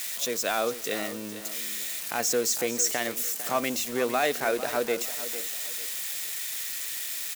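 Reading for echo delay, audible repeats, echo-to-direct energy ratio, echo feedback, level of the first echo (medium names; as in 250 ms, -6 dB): 451 ms, 2, -12.5 dB, 28%, -13.0 dB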